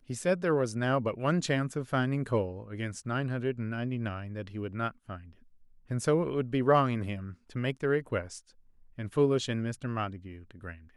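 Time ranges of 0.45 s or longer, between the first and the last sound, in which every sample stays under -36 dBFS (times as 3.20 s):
5.16–5.91 s
8.38–8.99 s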